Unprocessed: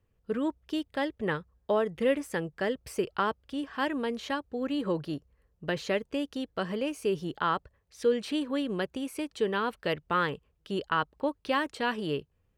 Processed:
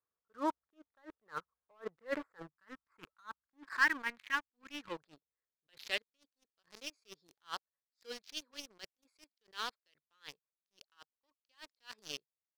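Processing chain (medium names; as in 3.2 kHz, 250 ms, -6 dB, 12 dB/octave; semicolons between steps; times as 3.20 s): local Wiener filter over 15 samples; band-pass sweep 1.3 kHz -> 5 kHz, 3.05–6.47 s; time-frequency box 2.42–4.91 s, 340–850 Hz -13 dB; waveshaping leveller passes 3; attacks held to a fixed rise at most 340 dB/s; trim +1.5 dB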